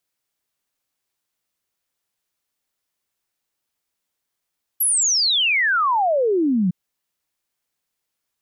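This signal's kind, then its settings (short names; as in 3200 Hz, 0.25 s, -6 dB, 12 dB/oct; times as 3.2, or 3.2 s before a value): log sweep 12000 Hz -> 170 Hz 1.91 s -15.5 dBFS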